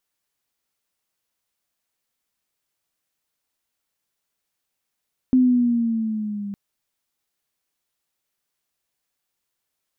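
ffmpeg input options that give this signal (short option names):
-f lavfi -i "aevalsrc='pow(10,(-11.5-16*t/1.21)/20)*sin(2*PI*258*1.21/(-4.5*log(2)/12)*(exp(-4.5*log(2)/12*t/1.21)-1))':d=1.21:s=44100"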